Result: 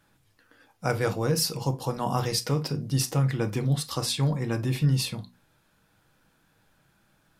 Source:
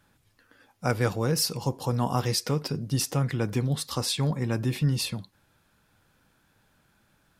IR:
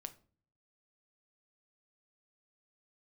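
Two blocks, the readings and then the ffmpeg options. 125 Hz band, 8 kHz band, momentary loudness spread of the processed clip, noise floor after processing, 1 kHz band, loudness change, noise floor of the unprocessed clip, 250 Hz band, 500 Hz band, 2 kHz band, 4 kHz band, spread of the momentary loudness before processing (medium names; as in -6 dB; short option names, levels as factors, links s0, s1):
+1.0 dB, 0.0 dB, 5 LU, -67 dBFS, +0.5 dB, +0.5 dB, -67 dBFS, 0.0 dB, +0.5 dB, 0.0 dB, 0.0 dB, 4 LU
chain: -filter_complex "[0:a]bandreject=f=60:t=h:w=6,bandreject=f=120:t=h:w=6,bandreject=f=180:t=h:w=6,bandreject=f=240:t=h:w=6[s0];[1:a]atrim=start_sample=2205,atrim=end_sample=3087[s1];[s0][s1]afir=irnorm=-1:irlink=0,volume=1.68"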